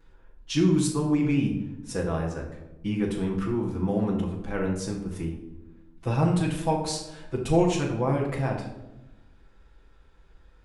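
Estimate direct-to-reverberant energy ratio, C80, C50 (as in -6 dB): -9.0 dB, 8.5 dB, 5.5 dB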